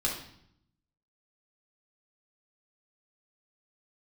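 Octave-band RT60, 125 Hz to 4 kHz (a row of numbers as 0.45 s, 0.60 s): 1.1 s, 0.95 s, 0.70 s, 0.70 s, 0.65 s, 0.65 s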